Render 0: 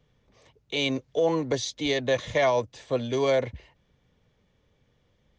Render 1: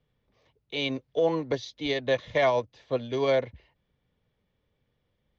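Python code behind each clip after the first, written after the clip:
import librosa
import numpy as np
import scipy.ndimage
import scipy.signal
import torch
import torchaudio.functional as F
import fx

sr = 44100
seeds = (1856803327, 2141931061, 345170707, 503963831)

y = scipy.signal.sosfilt(scipy.signal.butter(4, 5100.0, 'lowpass', fs=sr, output='sos'), x)
y = fx.upward_expand(y, sr, threshold_db=-36.0, expansion=1.5)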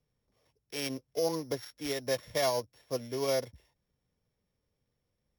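y = np.r_[np.sort(x[:len(x) // 8 * 8].reshape(-1, 8), axis=1).ravel(), x[len(x) // 8 * 8:]]
y = F.gain(torch.from_numpy(y), -6.0).numpy()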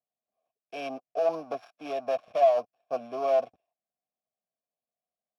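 y = fx.small_body(x, sr, hz=(220.0, 650.0, 1600.0), ring_ms=25, db=11)
y = fx.leveller(y, sr, passes=3)
y = fx.vowel_filter(y, sr, vowel='a')
y = F.gain(torch.from_numpy(y), 1.0).numpy()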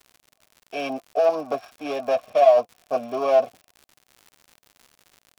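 y = fx.notch_comb(x, sr, f0_hz=170.0)
y = fx.dmg_crackle(y, sr, seeds[0], per_s=120.0, level_db=-46.0)
y = F.gain(torch.from_numpy(y), 9.0).numpy()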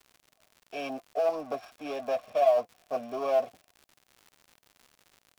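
y = fx.law_mismatch(x, sr, coded='mu')
y = F.gain(torch.from_numpy(y), -8.0).numpy()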